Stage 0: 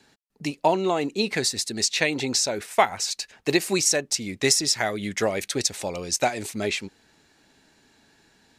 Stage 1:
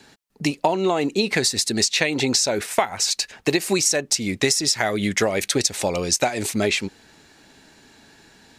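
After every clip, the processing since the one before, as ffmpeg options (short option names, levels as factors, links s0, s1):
-af "acompressor=threshold=0.0562:ratio=6,volume=2.66"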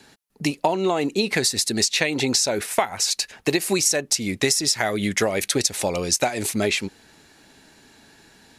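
-af "equalizer=f=11000:w=3:g=7.5,volume=0.891"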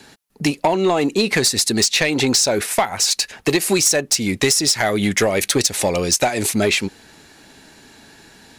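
-af "asoftclip=type=tanh:threshold=0.2,volume=2"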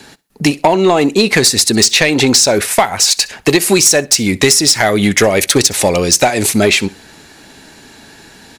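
-af "aecho=1:1:64|128:0.075|0.021,volume=2.11"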